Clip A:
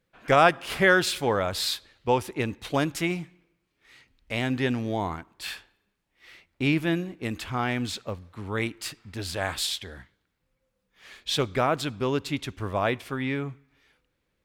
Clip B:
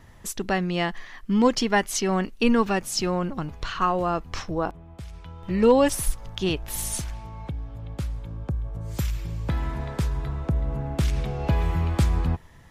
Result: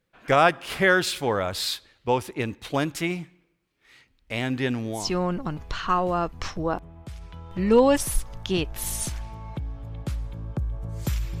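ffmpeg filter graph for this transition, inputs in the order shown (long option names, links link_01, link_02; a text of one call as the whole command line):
ffmpeg -i cue0.wav -i cue1.wav -filter_complex "[0:a]apad=whole_dur=11.4,atrim=end=11.4,atrim=end=5.14,asetpts=PTS-STARTPTS[link_01];[1:a]atrim=start=2.78:end=9.32,asetpts=PTS-STARTPTS[link_02];[link_01][link_02]acrossfade=duration=0.28:curve1=tri:curve2=tri" out.wav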